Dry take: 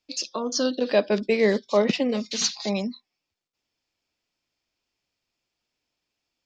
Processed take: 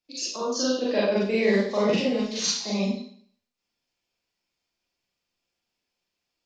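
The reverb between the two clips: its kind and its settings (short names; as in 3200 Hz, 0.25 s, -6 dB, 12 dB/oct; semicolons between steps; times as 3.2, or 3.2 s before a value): Schroeder reverb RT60 0.55 s, combs from 32 ms, DRR -7.5 dB; gain -8.5 dB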